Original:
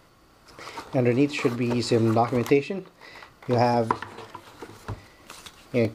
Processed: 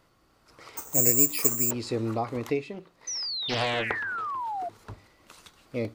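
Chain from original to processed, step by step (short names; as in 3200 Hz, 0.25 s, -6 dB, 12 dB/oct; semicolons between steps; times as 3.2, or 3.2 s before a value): 3.07–4.69 painted sound fall 670–6200 Hz -24 dBFS; 0.77–1.71 careless resampling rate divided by 6×, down filtered, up zero stuff; 2.73–4.33 Doppler distortion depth 0.6 ms; gain -8 dB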